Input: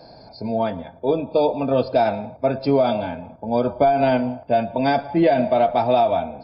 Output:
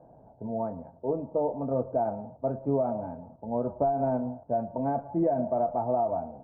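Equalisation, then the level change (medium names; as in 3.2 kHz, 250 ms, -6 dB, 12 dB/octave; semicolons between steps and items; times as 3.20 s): low-pass 1.1 kHz 24 dB/octave; distance through air 280 m; peaking EQ 140 Hz +3 dB 0.3 oct; -8.5 dB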